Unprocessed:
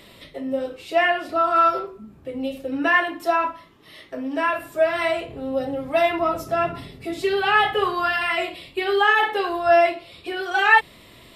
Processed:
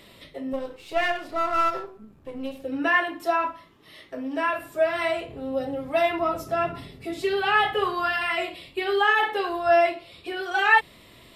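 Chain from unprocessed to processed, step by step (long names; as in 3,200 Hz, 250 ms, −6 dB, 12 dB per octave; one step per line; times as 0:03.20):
0:00.53–0:02.62: gain on one half-wave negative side −7 dB
level −3 dB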